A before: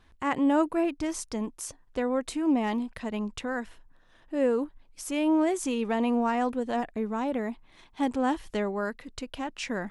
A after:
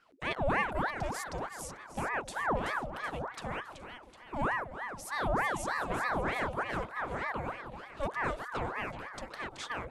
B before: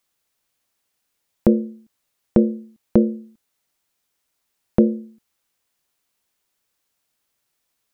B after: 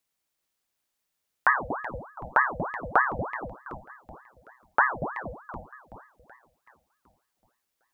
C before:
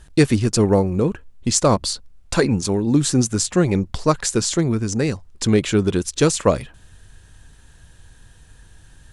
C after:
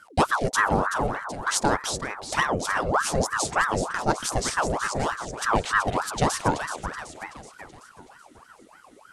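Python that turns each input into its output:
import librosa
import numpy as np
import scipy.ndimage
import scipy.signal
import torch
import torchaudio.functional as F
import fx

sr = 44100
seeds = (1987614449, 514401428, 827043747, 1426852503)

y = fx.echo_split(x, sr, split_hz=320.0, low_ms=235, high_ms=378, feedback_pct=52, wet_db=-9.0)
y = fx.ring_lfo(y, sr, carrier_hz=880.0, swing_pct=70, hz=3.3)
y = F.gain(torch.from_numpy(y), -4.0).numpy()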